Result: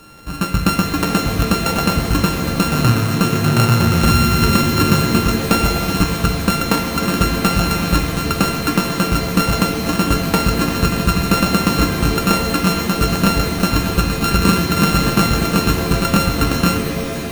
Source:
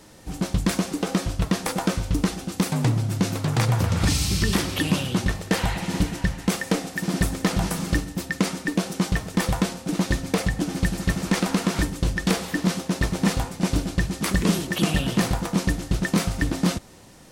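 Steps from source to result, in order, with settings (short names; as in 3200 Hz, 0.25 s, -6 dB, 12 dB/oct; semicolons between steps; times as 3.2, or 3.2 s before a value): sample sorter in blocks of 32 samples; shimmer reverb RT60 3.3 s, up +7 st, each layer -2 dB, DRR 5 dB; gain +5.5 dB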